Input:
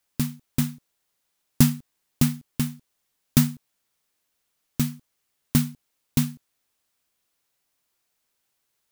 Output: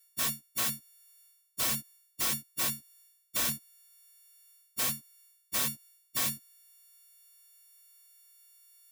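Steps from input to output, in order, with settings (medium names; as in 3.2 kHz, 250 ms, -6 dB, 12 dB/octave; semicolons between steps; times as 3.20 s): partials quantised in pitch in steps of 4 st; treble shelf 2.3 kHz +6 dB; reverse; compression 5:1, threshold -22 dBFS, peak gain reduction 19 dB; reverse; integer overflow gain 18.5 dB; comb of notches 420 Hz; trim -4 dB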